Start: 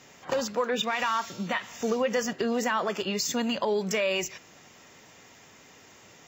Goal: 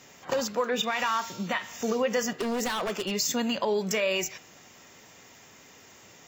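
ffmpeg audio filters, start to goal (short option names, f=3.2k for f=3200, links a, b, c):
-filter_complex "[0:a]asplit=3[a][b][c];[a]afade=t=out:st=2.38:d=0.02[d];[b]aeval=exprs='0.0668*(abs(mod(val(0)/0.0668+3,4)-2)-1)':c=same,afade=t=in:st=2.38:d=0.02,afade=t=out:st=3.1:d=0.02[e];[c]afade=t=in:st=3.1:d=0.02[f];[d][e][f]amix=inputs=3:normalize=0,highshelf=f=9k:g=6.5,bandreject=f=152.8:t=h:w=4,bandreject=f=305.6:t=h:w=4,bandreject=f=458.4:t=h:w=4,bandreject=f=611.2:t=h:w=4,bandreject=f=764:t=h:w=4,bandreject=f=916.8:t=h:w=4,bandreject=f=1.0696k:t=h:w=4,bandreject=f=1.2224k:t=h:w=4,bandreject=f=1.3752k:t=h:w=4,bandreject=f=1.528k:t=h:w=4,bandreject=f=1.6808k:t=h:w=4,bandreject=f=1.8336k:t=h:w=4,bandreject=f=1.9864k:t=h:w=4,bandreject=f=2.1392k:t=h:w=4,bandreject=f=2.292k:t=h:w=4,bandreject=f=2.4448k:t=h:w=4,bandreject=f=2.5976k:t=h:w=4,bandreject=f=2.7504k:t=h:w=4,bandreject=f=2.9032k:t=h:w=4,bandreject=f=3.056k:t=h:w=4,bandreject=f=3.2088k:t=h:w=4,bandreject=f=3.3616k:t=h:w=4,bandreject=f=3.5144k:t=h:w=4,bandreject=f=3.6672k:t=h:w=4,bandreject=f=3.82k:t=h:w=4,bandreject=f=3.9728k:t=h:w=4"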